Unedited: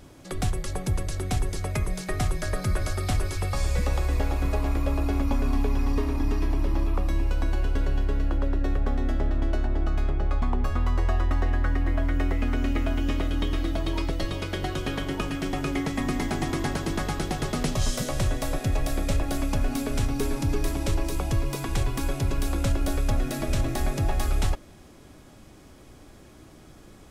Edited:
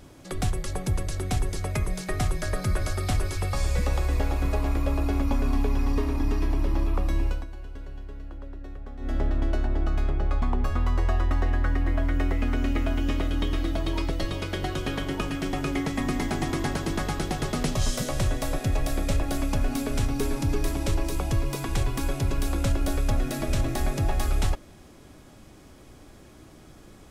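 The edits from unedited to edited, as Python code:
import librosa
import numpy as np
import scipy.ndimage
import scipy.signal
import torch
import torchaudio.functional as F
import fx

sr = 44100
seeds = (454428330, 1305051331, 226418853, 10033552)

y = fx.edit(x, sr, fx.fade_down_up(start_s=7.27, length_s=1.9, db=-14.0, fade_s=0.19), tone=tone)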